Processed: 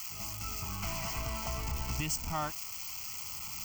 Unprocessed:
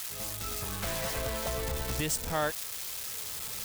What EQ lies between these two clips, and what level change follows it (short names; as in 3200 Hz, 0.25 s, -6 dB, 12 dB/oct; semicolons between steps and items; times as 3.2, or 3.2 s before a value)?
fixed phaser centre 2500 Hz, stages 8; 0.0 dB